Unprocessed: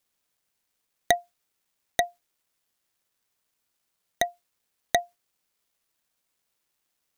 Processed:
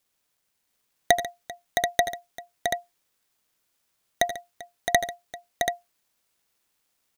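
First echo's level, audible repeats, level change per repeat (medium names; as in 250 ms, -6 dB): -13.5 dB, 5, no regular repeats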